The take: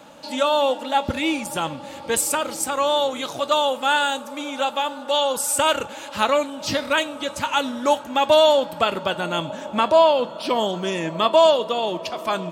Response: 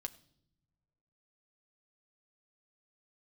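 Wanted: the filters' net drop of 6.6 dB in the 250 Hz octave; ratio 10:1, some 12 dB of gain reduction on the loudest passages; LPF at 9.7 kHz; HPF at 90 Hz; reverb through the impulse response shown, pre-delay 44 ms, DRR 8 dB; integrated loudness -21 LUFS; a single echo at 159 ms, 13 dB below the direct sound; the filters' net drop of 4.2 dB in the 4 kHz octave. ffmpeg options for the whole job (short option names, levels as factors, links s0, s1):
-filter_complex "[0:a]highpass=90,lowpass=9700,equalizer=f=250:t=o:g=-8.5,equalizer=f=4000:t=o:g=-5.5,acompressor=threshold=0.0631:ratio=10,aecho=1:1:159:0.224,asplit=2[s0][s1];[1:a]atrim=start_sample=2205,adelay=44[s2];[s1][s2]afir=irnorm=-1:irlink=0,volume=0.531[s3];[s0][s3]amix=inputs=2:normalize=0,volume=2.37"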